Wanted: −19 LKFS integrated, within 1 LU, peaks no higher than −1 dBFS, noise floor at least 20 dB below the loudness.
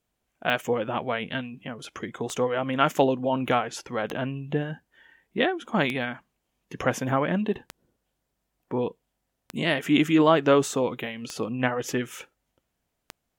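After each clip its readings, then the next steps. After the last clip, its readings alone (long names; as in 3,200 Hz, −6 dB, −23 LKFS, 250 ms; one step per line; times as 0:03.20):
number of clicks 8; integrated loudness −26.0 LKFS; sample peak −5.5 dBFS; target loudness −19.0 LKFS
→ click removal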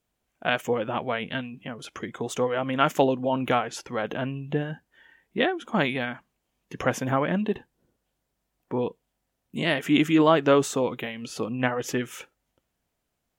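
number of clicks 0; integrated loudness −26.0 LKFS; sample peak −5.5 dBFS; target loudness −19.0 LKFS
→ level +7 dB
brickwall limiter −1 dBFS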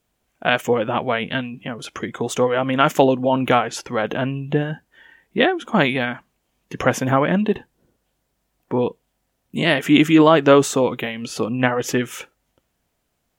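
integrated loudness −19.5 LKFS; sample peak −1.0 dBFS; background noise floor −72 dBFS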